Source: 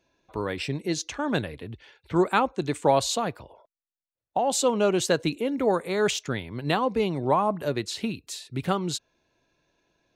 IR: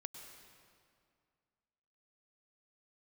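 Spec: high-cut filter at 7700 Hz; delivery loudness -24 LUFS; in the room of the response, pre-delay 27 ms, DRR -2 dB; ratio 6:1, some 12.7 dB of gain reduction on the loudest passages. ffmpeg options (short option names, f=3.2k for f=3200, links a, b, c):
-filter_complex "[0:a]lowpass=7.7k,acompressor=threshold=-30dB:ratio=6,asplit=2[a][b];[1:a]atrim=start_sample=2205,adelay=27[c];[b][c]afir=irnorm=-1:irlink=0,volume=6dB[d];[a][d]amix=inputs=2:normalize=0,volume=7dB"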